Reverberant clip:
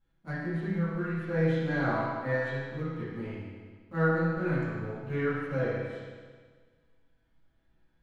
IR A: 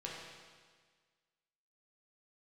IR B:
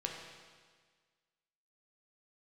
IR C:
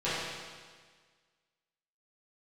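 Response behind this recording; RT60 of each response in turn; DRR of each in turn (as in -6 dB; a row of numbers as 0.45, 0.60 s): C; 1.6, 1.6, 1.6 s; -4.5, -0.5, -13.5 dB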